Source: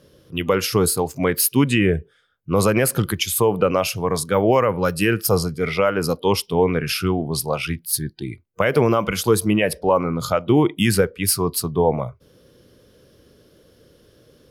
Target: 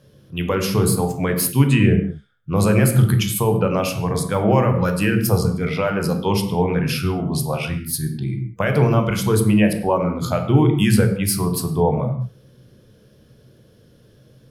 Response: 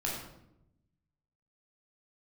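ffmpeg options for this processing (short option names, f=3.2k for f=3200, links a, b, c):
-filter_complex "[0:a]asplit=2[a][b];[b]equalizer=f=125:t=o:w=0.33:g=12,equalizer=f=200:t=o:w=0.33:g=10,equalizer=f=5k:t=o:w=0.33:g=-5,equalizer=f=16k:t=o:w=0.33:g=-7[c];[1:a]atrim=start_sample=2205,afade=t=out:st=0.27:d=0.01,atrim=end_sample=12348[d];[c][d]afir=irnorm=-1:irlink=0,volume=-5.5dB[e];[a][e]amix=inputs=2:normalize=0,volume=-5.5dB"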